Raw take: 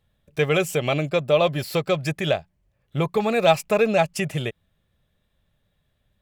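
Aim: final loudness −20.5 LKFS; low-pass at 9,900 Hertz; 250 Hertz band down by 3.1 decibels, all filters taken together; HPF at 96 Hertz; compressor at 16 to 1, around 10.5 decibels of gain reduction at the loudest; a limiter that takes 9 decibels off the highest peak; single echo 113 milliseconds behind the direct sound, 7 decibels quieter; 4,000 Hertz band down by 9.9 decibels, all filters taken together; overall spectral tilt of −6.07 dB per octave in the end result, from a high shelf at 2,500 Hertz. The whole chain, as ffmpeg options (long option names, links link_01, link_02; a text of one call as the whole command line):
ffmpeg -i in.wav -af "highpass=96,lowpass=9900,equalizer=frequency=250:width_type=o:gain=-4.5,highshelf=frequency=2500:gain=-7.5,equalizer=frequency=4000:width_type=o:gain=-6.5,acompressor=threshold=-24dB:ratio=16,alimiter=limit=-24dB:level=0:latency=1,aecho=1:1:113:0.447,volume=13dB" out.wav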